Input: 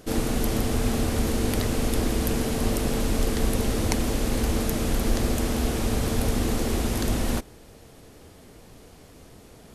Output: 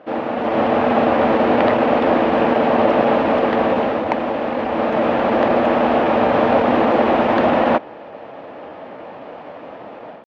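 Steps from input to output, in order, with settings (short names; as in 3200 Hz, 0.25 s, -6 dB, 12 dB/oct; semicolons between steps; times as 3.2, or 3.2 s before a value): AGC gain up to 11 dB; tempo 0.95×; speaker cabinet 380–2300 Hz, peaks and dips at 410 Hz -8 dB, 590 Hz +6 dB, 860 Hz +4 dB, 1500 Hz -3 dB, 2100 Hz -5 dB; gain +8.5 dB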